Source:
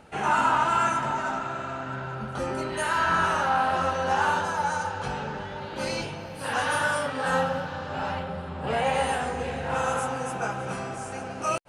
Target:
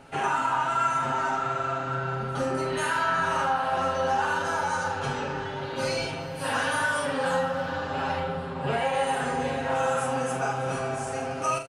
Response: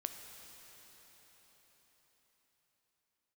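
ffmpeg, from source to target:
-af "aecho=1:1:7.4:0.75,acompressor=threshold=0.0631:ratio=5,aecho=1:1:44|79:0.501|0.251"

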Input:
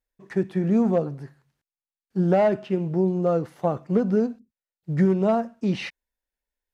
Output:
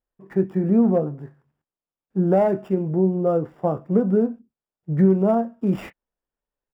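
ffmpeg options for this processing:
-filter_complex "[0:a]equalizer=f=280:w=0.33:g=5.5,acrossover=split=2300[s0][s1];[s0]asplit=2[s2][s3];[s3]adelay=26,volume=0.251[s4];[s2][s4]amix=inputs=2:normalize=0[s5];[s1]acrusher=samples=21:mix=1:aa=0.000001[s6];[s5][s6]amix=inputs=2:normalize=0,volume=0.708"

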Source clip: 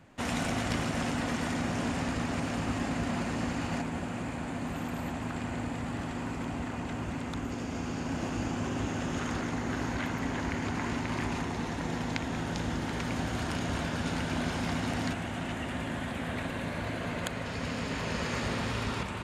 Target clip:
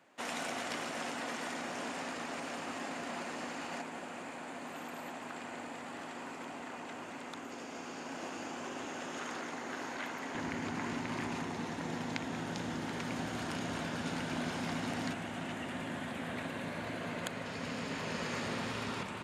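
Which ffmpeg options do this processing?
-af "asetnsamples=n=441:p=0,asendcmd='10.35 highpass f 150',highpass=380,volume=0.631"

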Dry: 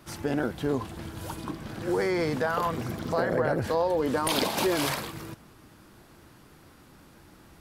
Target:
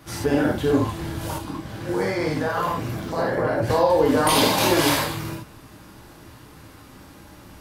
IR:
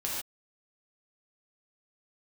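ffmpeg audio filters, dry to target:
-filter_complex "[0:a]acontrast=21[s0];[1:a]atrim=start_sample=2205,atrim=end_sample=4410[s1];[s0][s1]afir=irnorm=-1:irlink=0,asettb=1/sr,asplit=3[s2][s3][s4];[s2]atrim=end=1.384[s5];[s3]atrim=start=1.38:end=3.7,asetpts=PTS-STARTPTS,afade=t=in:d=0.004:c=qsin,afade=t=out:st=2.316:d=0.004:c=qsin,flanger=delay=8:depth=7.7:regen=80:speed=1.3:shape=triangular[s6];[s4]atrim=start=3.696[s7];[s5][s6]acrossfade=d=0.004:c1=hsin:c2=qsin[s8];[s8][s7]acrossfade=d=0.004:c1=qsin:c2=hsin"

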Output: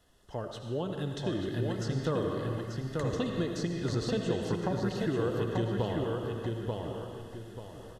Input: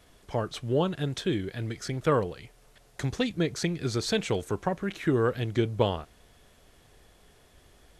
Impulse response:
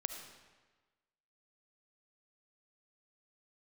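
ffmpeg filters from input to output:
-filter_complex "[0:a]dynaudnorm=f=790:g=3:m=3.16[s0];[1:a]atrim=start_sample=2205,asetrate=42336,aresample=44100[s1];[s0][s1]afir=irnorm=-1:irlink=0,acrossover=split=820|7000[s2][s3][s4];[s2]acompressor=threshold=0.0794:ratio=4[s5];[s3]acompressor=threshold=0.0158:ratio=4[s6];[s4]acompressor=threshold=0.00178:ratio=4[s7];[s5][s6][s7]amix=inputs=3:normalize=0,asuperstop=centerf=2300:order=12:qfactor=6.2,asplit=2[s8][s9];[s9]adelay=887,lowpass=f=4300:p=1,volume=0.708,asplit=2[s10][s11];[s11]adelay=887,lowpass=f=4300:p=1,volume=0.33,asplit=2[s12][s13];[s13]adelay=887,lowpass=f=4300:p=1,volume=0.33,asplit=2[s14][s15];[s15]adelay=887,lowpass=f=4300:p=1,volume=0.33[s16];[s8][s10][s12][s14][s16]amix=inputs=5:normalize=0,volume=0.422"

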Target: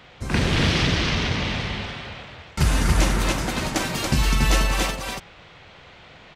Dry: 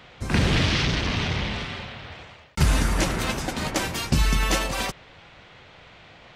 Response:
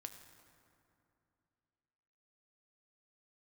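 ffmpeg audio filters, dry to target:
-af "aecho=1:1:46.65|282.8:0.316|0.708"

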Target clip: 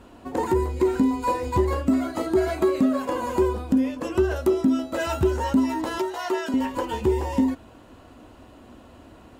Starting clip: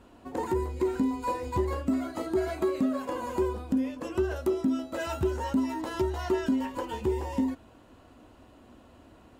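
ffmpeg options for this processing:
-filter_complex "[0:a]asettb=1/sr,asplit=3[s0][s1][s2];[s0]atrim=end=5.984[s3];[s1]atrim=start=5.98:end=6.54,asetpts=PTS-STARTPTS,afade=t=in:d=0.004:c=qsin,afade=t=out:st=0.556:d=0.004:c=qsin,highpass=470[s4];[s2]atrim=start=6.536[s5];[s3][s4]acrossfade=d=0.004:c1=hsin:c2=qsin[s6];[s6][s5]acrossfade=d=0.004:c1=qsin:c2=hsin,volume=2.11"

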